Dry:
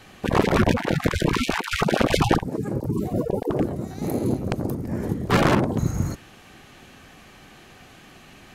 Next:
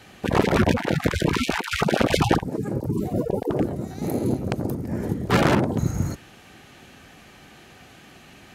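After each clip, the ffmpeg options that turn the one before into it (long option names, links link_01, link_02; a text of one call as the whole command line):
ffmpeg -i in.wav -af "highpass=44,bandreject=frequency=1100:width=14" out.wav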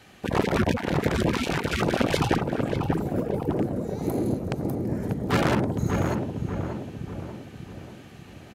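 ffmpeg -i in.wav -filter_complex "[0:a]asplit=2[link_01][link_02];[link_02]adelay=590,lowpass=frequency=1400:poles=1,volume=-3.5dB,asplit=2[link_03][link_04];[link_04]adelay=590,lowpass=frequency=1400:poles=1,volume=0.53,asplit=2[link_05][link_06];[link_06]adelay=590,lowpass=frequency=1400:poles=1,volume=0.53,asplit=2[link_07][link_08];[link_08]adelay=590,lowpass=frequency=1400:poles=1,volume=0.53,asplit=2[link_09][link_10];[link_10]adelay=590,lowpass=frequency=1400:poles=1,volume=0.53,asplit=2[link_11][link_12];[link_12]adelay=590,lowpass=frequency=1400:poles=1,volume=0.53,asplit=2[link_13][link_14];[link_14]adelay=590,lowpass=frequency=1400:poles=1,volume=0.53[link_15];[link_01][link_03][link_05][link_07][link_09][link_11][link_13][link_15]amix=inputs=8:normalize=0,volume=-4dB" out.wav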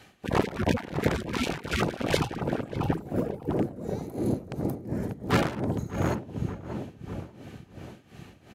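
ffmpeg -i in.wav -af "tremolo=f=2.8:d=0.82" out.wav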